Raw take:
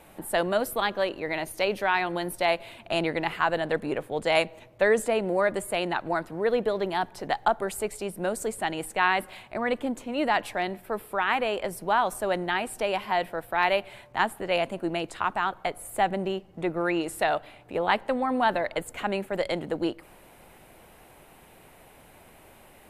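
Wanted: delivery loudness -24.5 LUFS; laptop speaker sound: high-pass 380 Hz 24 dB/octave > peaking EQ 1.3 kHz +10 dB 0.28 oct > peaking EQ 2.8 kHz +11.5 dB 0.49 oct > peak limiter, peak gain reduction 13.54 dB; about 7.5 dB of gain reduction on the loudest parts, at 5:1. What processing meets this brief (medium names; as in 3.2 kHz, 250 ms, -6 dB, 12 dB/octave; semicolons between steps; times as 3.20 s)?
compression 5:1, threshold -26 dBFS; high-pass 380 Hz 24 dB/octave; peaking EQ 1.3 kHz +10 dB 0.28 oct; peaking EQ 2.8 kHz +11.5 dB 0.49 oct; trim +10 dB; peak limiter -13.5 dBFS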